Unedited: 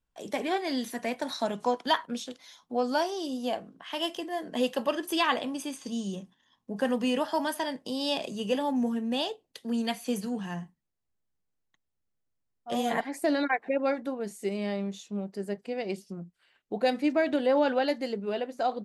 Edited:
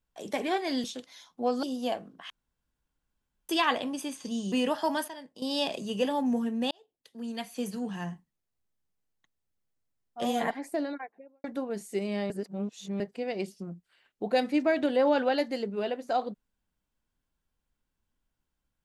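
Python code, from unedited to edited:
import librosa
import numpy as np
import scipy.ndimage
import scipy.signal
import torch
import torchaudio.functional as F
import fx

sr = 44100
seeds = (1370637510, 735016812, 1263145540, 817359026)

y = fx.studio_fade_out(x, sr, start_s=12.78, length_s=1.16)
y = fx.edit(y, sr, fx.cut(start_s=0.84, length_s=1.32),
    fx.cut(start_s=2.95, length_s=0.29),
    fx.room_tone_fill(start_s=3.91, length_s=1.19),
    fx.cut(start_s=6.13, length_s=0.89),
    fx.clip_gain(start_s=7.58, length_s=0.34, db=-11.5),
    fx.fade_in_span(start_s=9.21, length_s=1.32),
    fx.reverse_span(start_s=14.8, length_s=0.7), tone=tone)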